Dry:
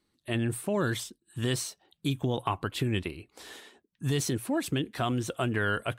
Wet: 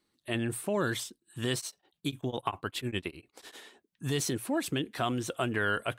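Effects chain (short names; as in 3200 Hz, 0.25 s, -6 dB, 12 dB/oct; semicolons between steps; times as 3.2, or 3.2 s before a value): low shelf 160 Hz -8 dB; 1.57–3.58 beating tremolo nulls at 10 Hz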